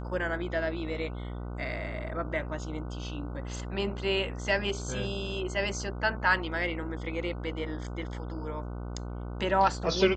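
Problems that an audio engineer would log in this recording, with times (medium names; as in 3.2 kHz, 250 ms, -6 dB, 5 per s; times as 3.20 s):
buzz 60 Hz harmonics 25 -37 dBFS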